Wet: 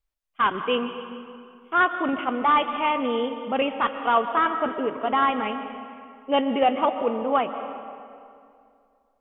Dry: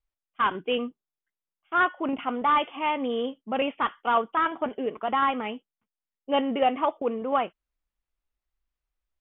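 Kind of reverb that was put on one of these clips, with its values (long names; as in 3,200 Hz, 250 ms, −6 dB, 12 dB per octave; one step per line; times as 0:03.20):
comb and all-pass reverb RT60 2.4 s, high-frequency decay 0.65×, pre-delay 90 ms, DRR 8.5 dB
level +2.5 dB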